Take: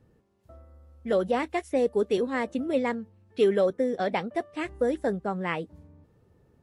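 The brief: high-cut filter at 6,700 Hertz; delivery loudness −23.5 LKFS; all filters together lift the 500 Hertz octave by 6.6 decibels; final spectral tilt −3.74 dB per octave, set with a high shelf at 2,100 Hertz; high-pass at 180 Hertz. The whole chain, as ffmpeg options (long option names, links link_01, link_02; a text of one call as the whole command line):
ffmpeg -i in.wav -af "highpass=180,lowpass=6700,equalizer=frequency=500:width_type=o:gain=7.5,highshelf=frequency=2100:gain=5.5,volume=-1.5dB" out.wav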